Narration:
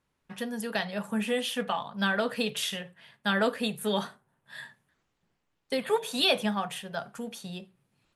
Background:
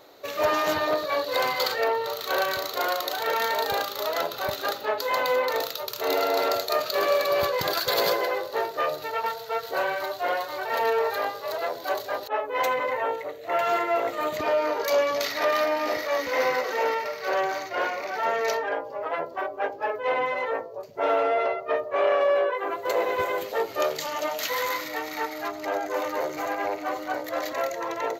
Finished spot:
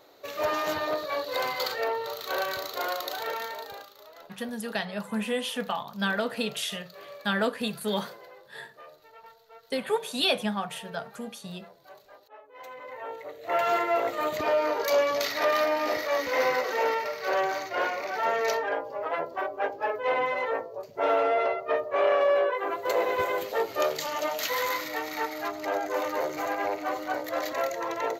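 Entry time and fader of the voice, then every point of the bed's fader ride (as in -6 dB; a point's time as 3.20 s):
4.00 s, -0.5 dB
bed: 3.20 s -4.5 dB
4.07 s -22.5 dB
12.52 s -22.5 dB
13.52 s -1 dB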